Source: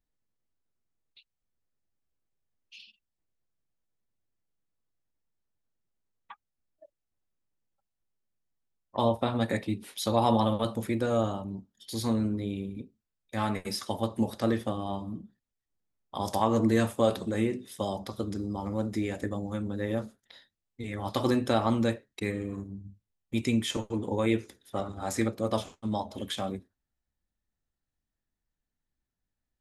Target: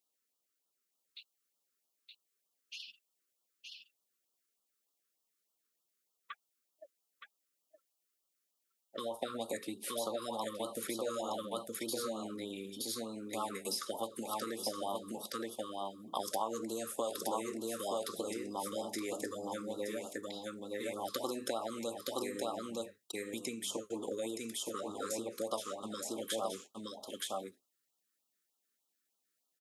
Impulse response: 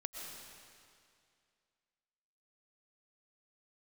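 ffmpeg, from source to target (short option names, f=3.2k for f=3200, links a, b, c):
-filter_complex "[0:a]aecho=1:1:920:0.562,acrossover=split=1400|5300[a][b][c];[a]acompressor=threshold=-26dB:ratio=4[d];[b]acompressor=threshold=-50dB:ratio=4[e];[c]acompressor=threshold=-50dB:ratio=4[f];[d][e][f]amix=inputs=3:normalize=0,equalizer=f=1.3k:t=o:w=0.27:g=5,acompressor=threshold=-31dB:ratio=6,highpass=410,highshelf=f=4.5k:g=10.5,afftfilt=real='re*(1-between(b*sr/1024,710*pow(2000/710,0.5+0.5*sin(2*PI*3.3*pts/sr))/1.41,710*pow(2000/710,0.5+0.5*sin(2*PI*3.3*pts/sr))*1.41))':imag='im*(1-between(b*sr/1024,710*pow(2000/710,0.5+0.5*sin(2*PI*3.3*pts/sr))/1.41,710*pow(2000/710,0.5+0.5*sin(2*PI*3.3*pts/sr))*1.41))':win_size=1024:overlap=0.75,volume=1.5dB"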